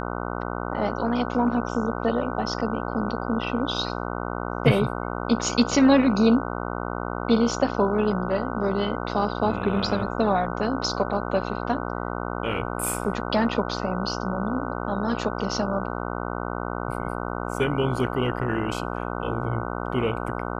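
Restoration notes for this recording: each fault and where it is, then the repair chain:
buzz 60 Hz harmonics 25 -30 dBFS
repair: de-hum 60 Hz, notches 25

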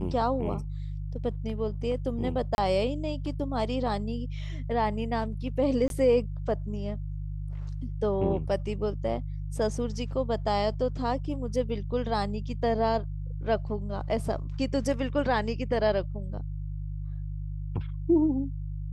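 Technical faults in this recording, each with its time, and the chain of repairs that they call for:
hum 50 Hz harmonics 3 -34 dBFS
2.55–2.58 s: dropout 31 ms
5.88–5.90 s: dropout 22 ms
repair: de-hum 50 Hz, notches 3; interpolate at 2.55 s, 31 ms; interpolate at 5.88 s, 22 ms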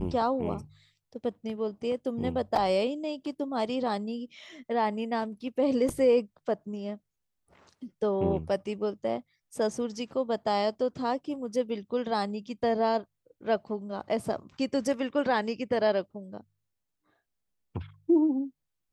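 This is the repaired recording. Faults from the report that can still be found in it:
nothing left

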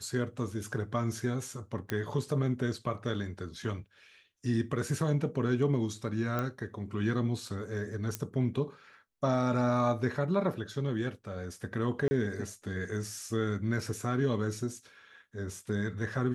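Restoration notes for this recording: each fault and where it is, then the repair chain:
1.90 s: pop -18 dBFS
6.39 s: pop -19 dBFS
8.15 s: pop -16 dBFS
12.08–12.11 s: dropout 30 ms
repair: de-click; interpolate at 12.08 s, 30 ms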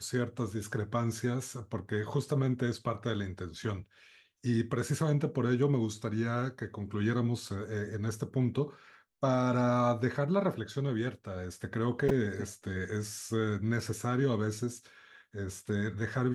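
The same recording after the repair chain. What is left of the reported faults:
nothing left

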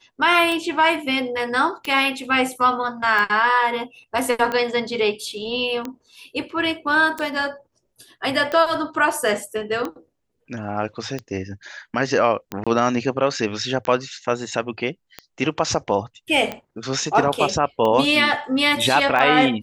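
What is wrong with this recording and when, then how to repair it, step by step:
tick 45 rpm -13 dBFS
12.64–12.67 s: dropout 26 ms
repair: de-click; interpolate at 12.64 s, 26 ms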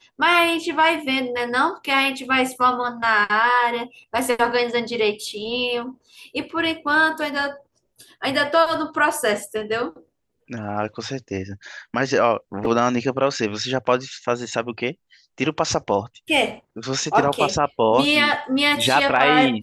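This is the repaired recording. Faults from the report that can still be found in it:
nothing left

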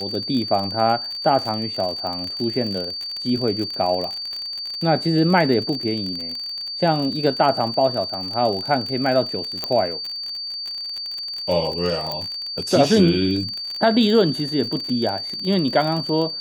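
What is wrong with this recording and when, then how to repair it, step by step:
crackle 40 per s -25 dBFS
whine 4.6 kHz -27 dBFS
9.64 s: pop -9 dBFS
12.12 s: pop -13 dBFS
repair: de-click; band-stop 4.6 kHz, Q 30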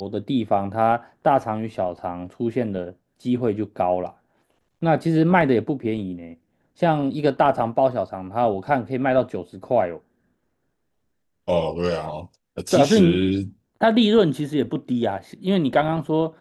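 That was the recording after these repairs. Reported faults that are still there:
nothing left

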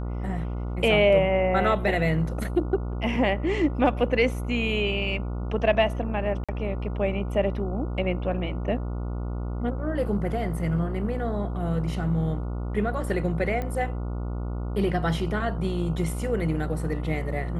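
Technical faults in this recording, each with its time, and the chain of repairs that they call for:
buzz 60 Hz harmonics 24 -30 dBFS
6.44–6.49 s: dropout 46 ms
13.62 s: pop -19 dBFS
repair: de-click; de-hum 60 Hz, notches 24; interpolate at 6.44 s, 46 ms

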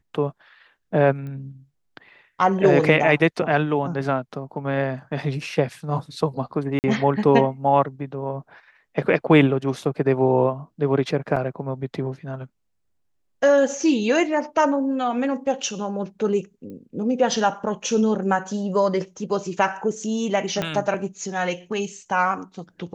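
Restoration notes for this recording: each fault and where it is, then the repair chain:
1.27 s: pop -26 dBFS
6.79–6.84 s: dropout 49 ms
11.36–11.37 s: dropout 5.1 ms
16.70 s: pop -29 dBFS
20.62 s: pop -11 dBFS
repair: de-click; interpolate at 6.79 s, 49 ms; interpolate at 11.36 s, 5.1 ms

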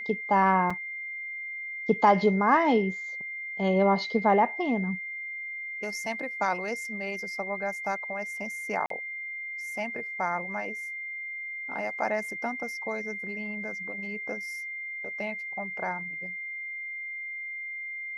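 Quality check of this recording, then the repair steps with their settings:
whine 2.1 kHz -34 dBFS
0.70 s: dropout 4.6 ms
8.86–8.90 s: dropout 43 ms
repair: band-stop 2.1 kHz, Q 30; interpolate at 0.70 s, 4.6 ms; interpolate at 8.86 s, 43 ms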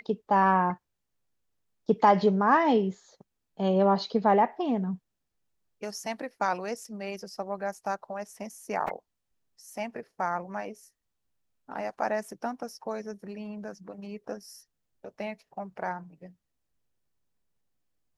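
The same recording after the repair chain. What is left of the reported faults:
nothing left

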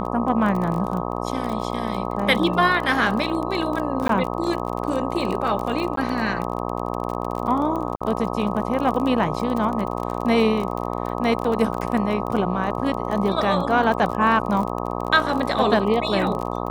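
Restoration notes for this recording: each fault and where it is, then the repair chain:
buzz 60 Hz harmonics 21 -27 dBFS
crackle 31 per s -26 dBFS
4.08–4.09 s: dropout 13 ms
5.96–5.97 s: dropout 13 ms
7.96–8.01 s: dropout 46 ms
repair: de-click; de-hum 60 Hz, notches 21; interpolate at 4.08 s, 13 ms; interpolate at 5.96 s, 13 ms; interpolate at 7.96 s, 46 ms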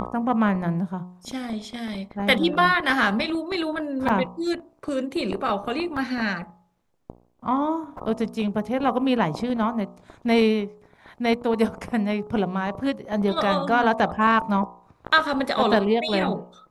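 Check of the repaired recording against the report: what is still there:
nothing left

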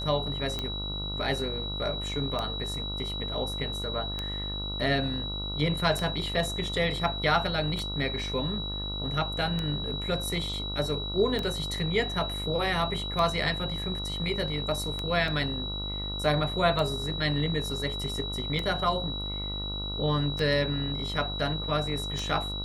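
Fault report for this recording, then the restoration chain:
buzz 50 Hz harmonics 28 -36 dBFS
tick 33 1/3 rpm -17 dBFS
whine 3.9 kHz -34 dBFS
15.28 s: dropout 2.1 ms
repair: de-click; de-hum 50 Hz, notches 28; band-stop 3.9 kHz, Q 30; interpolate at 15.28 s, 2.1 ms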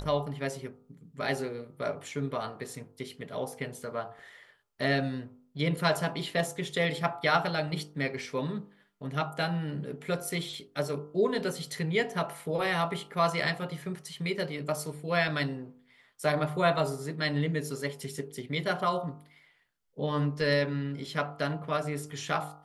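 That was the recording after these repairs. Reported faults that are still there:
nothing left

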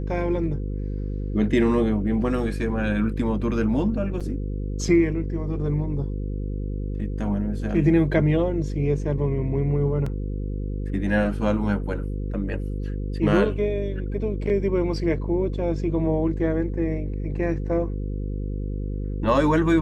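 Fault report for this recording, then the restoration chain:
buzz 50 Hz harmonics 10 -28 dBFS
4.20–4.21 s: dropout 6.5 ms
10.06 s: dropout 4.3 ms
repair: de-hum 50 Hz, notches 10; interpolate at 4.20 s, 6.5 ms; interpolate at 10.06 s, 4.3 ms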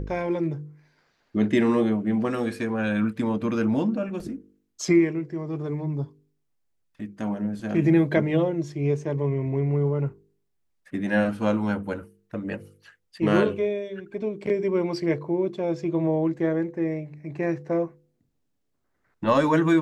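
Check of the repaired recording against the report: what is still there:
nothing left

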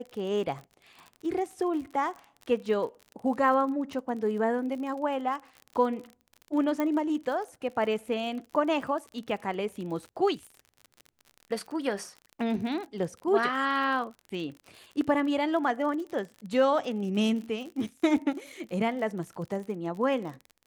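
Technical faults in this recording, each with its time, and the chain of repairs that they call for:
crackle 45 per s -37 dBFS
6.80 s: pop -17 dBFS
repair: de-click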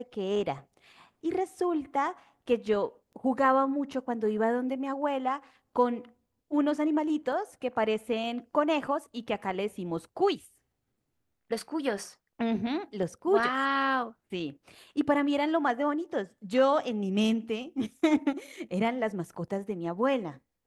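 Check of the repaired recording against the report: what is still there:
6.80 s: pop

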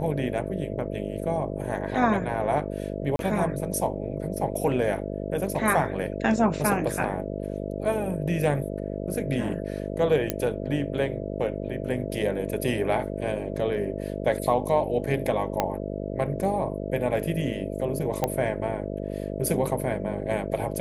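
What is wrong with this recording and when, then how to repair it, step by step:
buzz 50 Hz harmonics 13 -32 dBFS
3.16–3.19 s: dropout 32 ms
10.30 s: pop -9 dBFS
15.60 s: pop -9 dBFS
18.24 s: pop -10 dBFS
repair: de-click; de-hum 50 Hz, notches 13; interpolate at 3.16 s, 32 ms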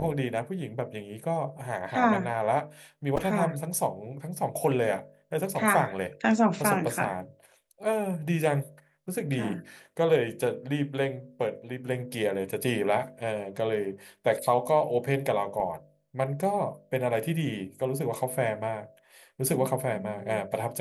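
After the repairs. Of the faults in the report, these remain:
10.30 s: pop
15.60 s: pop

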